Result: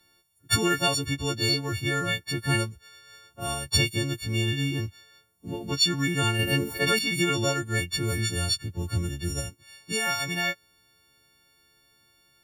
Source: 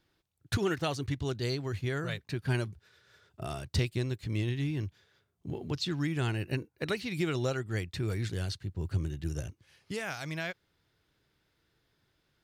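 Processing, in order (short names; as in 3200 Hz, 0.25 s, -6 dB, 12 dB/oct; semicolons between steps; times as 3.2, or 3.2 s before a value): frequency quantiser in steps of 4 st; 6.39–6.99 fast leveller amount 70%; gain +4.5 dB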